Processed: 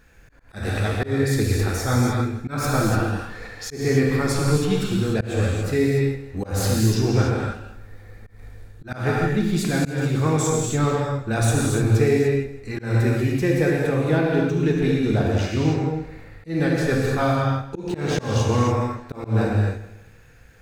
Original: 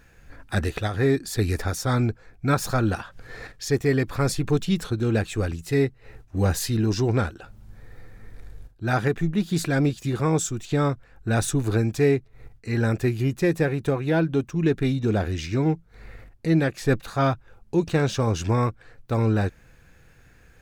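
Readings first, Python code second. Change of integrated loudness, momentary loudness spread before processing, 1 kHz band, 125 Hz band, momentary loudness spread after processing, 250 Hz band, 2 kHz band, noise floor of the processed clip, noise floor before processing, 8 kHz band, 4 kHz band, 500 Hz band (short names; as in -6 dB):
+2.5 dB, 6 LU, +2.5 dB, +3.0 dB, 9 LU, +2.0 dB, +2.5 dB, -47 dBFS, -54 dBFS, +3.0 dB, +2.5 dB, +2.5 dB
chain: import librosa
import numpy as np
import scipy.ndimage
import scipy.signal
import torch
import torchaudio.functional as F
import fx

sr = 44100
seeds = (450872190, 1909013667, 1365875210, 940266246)

p1 = x + fx.echo_feedback(x, sr, ms=162, feedback_pct=35, wet_db=-16.0, dry=0)
p2 = fx.rev_gated(p1, sr, seeds[0], gate_ms=320, shape='flat', drr_db=-3.0)
p3 = fx.auto_swell(p2, sr, attack_ms=173.0)
y = p3 * librosa.db_to_amplitude(-1.5)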